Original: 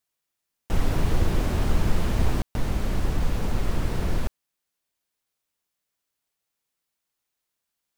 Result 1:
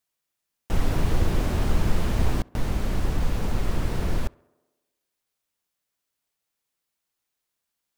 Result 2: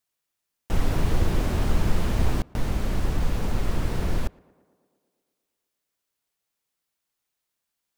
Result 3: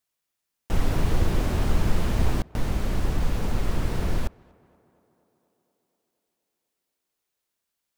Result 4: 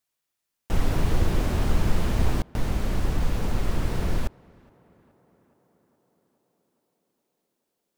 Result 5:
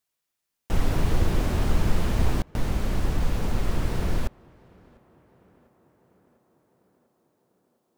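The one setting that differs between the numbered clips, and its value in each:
tape echo, time: 67, 116, 240, 421, 698 ms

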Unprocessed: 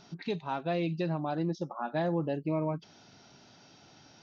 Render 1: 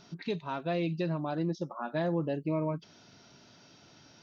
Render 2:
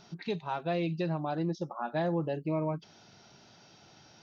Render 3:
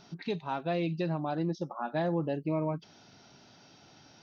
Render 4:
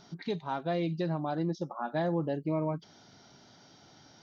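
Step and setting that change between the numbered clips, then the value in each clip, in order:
notch, frequency: 790, 270, 7100, 2600 Hz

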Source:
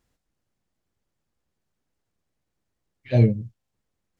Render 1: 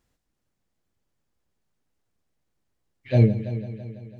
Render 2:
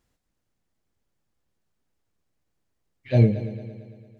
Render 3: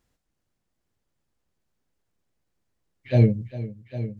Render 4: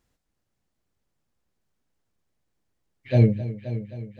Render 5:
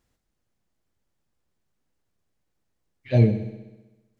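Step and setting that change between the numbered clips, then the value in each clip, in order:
multi-head echo, time: 166, 113, 402, 263, 64 ms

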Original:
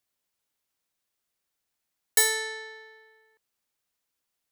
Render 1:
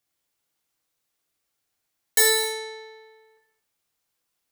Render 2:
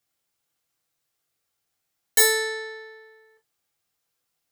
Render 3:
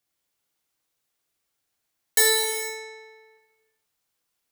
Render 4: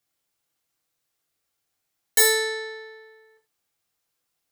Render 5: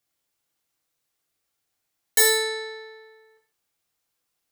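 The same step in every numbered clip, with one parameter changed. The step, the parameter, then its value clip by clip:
non-linear reverb, gate: 310, 80, 520, 120, 180 ms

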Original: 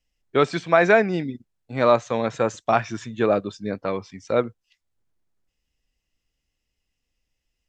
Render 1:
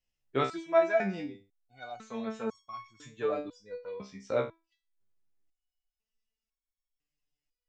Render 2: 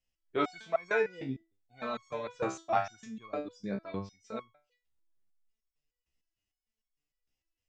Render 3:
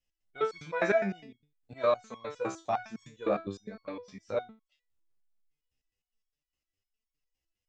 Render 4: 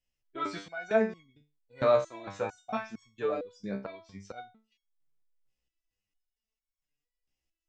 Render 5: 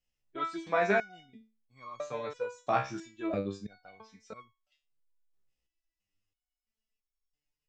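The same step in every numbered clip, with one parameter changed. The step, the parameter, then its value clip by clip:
stepped resonator, rate: 2, 6.6, 9.8, 4.4, 3 Hz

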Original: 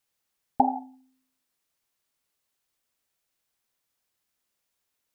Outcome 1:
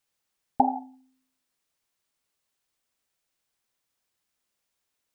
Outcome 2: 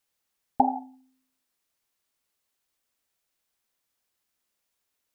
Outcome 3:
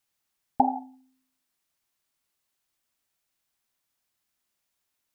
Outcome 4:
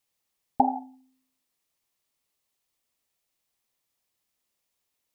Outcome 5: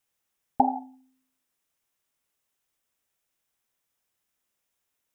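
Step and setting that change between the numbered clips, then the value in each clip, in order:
bell, frequency: 13000, 130, 480, 1500, 4400 Hz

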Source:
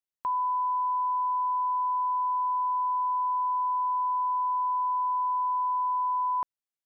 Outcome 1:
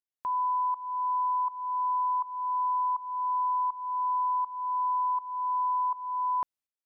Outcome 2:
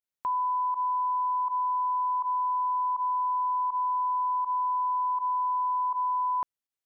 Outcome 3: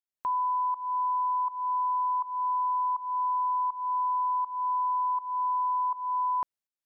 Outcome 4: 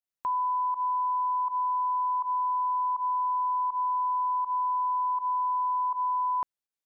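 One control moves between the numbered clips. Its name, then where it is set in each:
pump, release: 519, 69, 326, 101 ms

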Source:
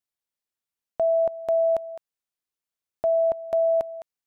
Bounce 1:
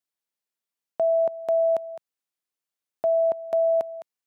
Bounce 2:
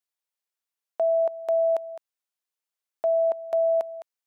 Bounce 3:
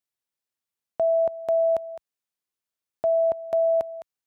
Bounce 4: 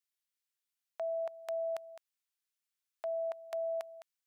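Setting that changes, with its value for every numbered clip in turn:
HPF, cutoff: 150, 460, 53, 1500 Hz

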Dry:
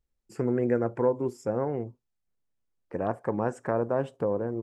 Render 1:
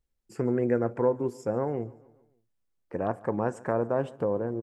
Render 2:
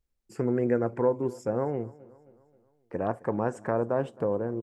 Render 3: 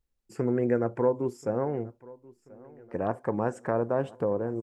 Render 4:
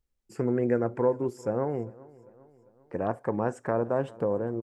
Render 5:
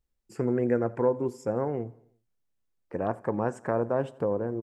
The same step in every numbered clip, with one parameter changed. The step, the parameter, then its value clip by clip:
feedback echo, time: 143, 265, 1034, 398, 87 ms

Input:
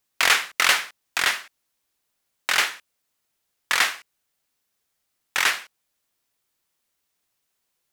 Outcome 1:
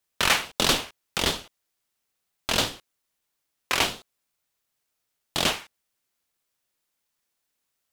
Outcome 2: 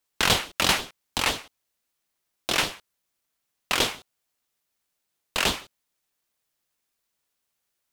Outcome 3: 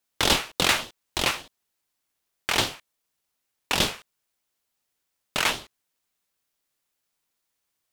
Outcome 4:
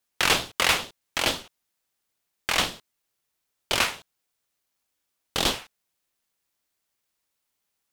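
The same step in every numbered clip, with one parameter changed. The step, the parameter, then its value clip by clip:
ring modulator with a swept carrier, at: 1.5, 6, 3.4, 2.2 Hz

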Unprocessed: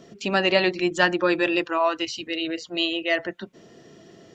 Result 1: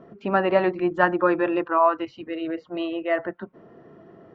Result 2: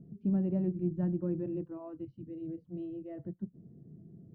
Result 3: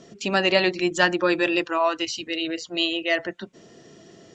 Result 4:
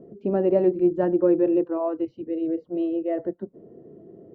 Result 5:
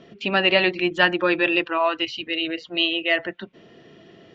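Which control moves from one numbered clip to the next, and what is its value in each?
synth low-pass, frequency: 1200, 160, 7800, 450, 3000 Hz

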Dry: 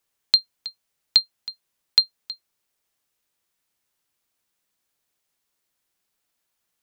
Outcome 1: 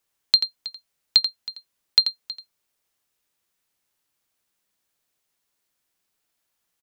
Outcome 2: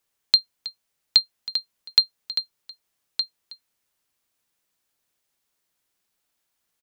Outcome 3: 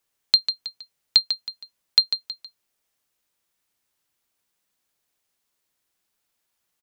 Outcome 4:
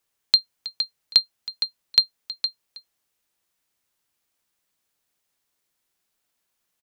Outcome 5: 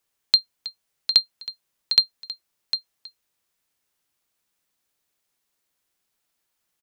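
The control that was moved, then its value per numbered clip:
echo, time: 86, 1215, 147, 463, 754 ms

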